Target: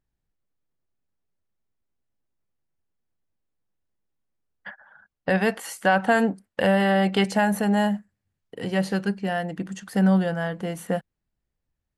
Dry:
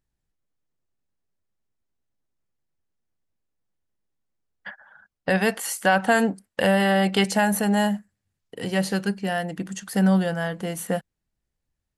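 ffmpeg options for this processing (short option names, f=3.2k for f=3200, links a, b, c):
-af "highshelf=f=4.2k:g=-9.5"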